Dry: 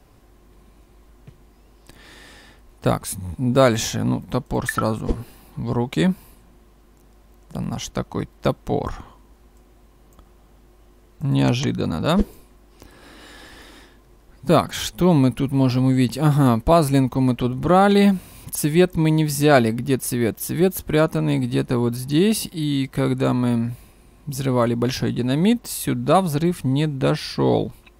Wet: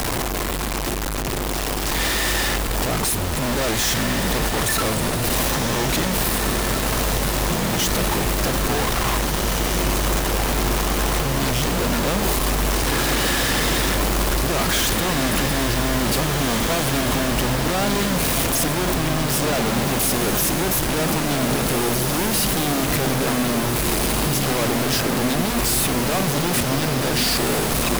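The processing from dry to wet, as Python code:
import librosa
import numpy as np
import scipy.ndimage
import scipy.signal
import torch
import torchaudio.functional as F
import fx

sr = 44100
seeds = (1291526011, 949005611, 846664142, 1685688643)

y = np.sign(x) * np.sqrt(np.mean(np.square(x)))
y = fx.low_shelf(y, sr, hz=210.0, db=-5.0)
y = fx.echo_diffused(y, sr, ms=1887, feedback_pct=67, wet_db=-4)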